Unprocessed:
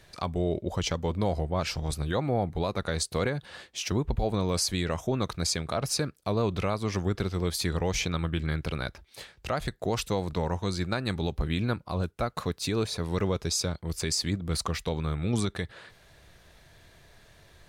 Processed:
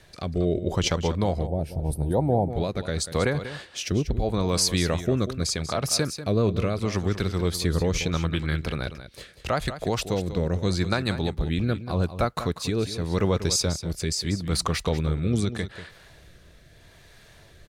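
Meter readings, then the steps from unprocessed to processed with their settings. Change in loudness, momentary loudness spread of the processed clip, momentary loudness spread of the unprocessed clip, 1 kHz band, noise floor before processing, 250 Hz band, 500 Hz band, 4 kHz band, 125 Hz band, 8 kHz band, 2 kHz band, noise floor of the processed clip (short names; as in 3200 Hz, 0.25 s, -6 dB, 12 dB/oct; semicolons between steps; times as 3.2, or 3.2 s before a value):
+4.0 dB, 6 LU, 5 LU, +2.0 dB, -58 dBFS, +4.0 dB, +4.0 dB, +3.5 dB, +4.5 dB, +3.5 dB, +3.0 dB, -52 dBFS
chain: rotary speaker horn 0.8 Hz; echo 0.191 s -12 dB; spectral gain 1.47–2.5, 990–8300 Hz -18 dB; gain +5.5 dB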